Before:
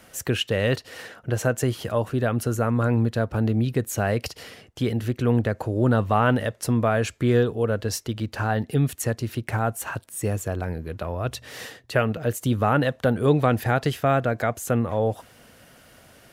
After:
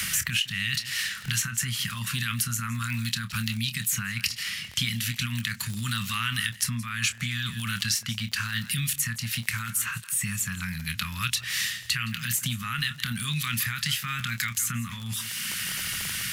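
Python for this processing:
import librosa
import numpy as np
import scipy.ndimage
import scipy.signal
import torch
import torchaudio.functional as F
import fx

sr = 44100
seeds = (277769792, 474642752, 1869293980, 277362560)

p1 = fx.highpass(x, sr, hz=140.0, slope=6)
p2 = fx.bass_treble(p1, sr, bass_db=-12, treble_db=1)
p3 = p2 + 10.0 ** (-20.5 / 20.0) * np.pad(p2, (int(164 * sr / 1000.0), 0))[:len(p2)]
p4 = fx.over_compress(p3, sr, threshold_db=-28.0, ratio=-0.5)
p5 = p3 + (p4 * librosa.db_to_amplitude(1.0))
p6 = scipy.signal.sosfilt(scipy.signal.ellip(3, 1.0, 40, [190.0, 1200.0], 'bandstop', fs=sr, output='sos'), p5)
p7 = fx.band_shelf(p6, sr, hz=930.0, db=-11.0, octaves=1.7)
p8 = fx.doubler(p7, sr, ms=26.0, db=-10.0)
p9 = fx.dmg_crackle(p8, sr, seeds[0], per_s=41.0, level_db=-36.0)
y = fx.band_squash(p9, sr, depth_pct=100)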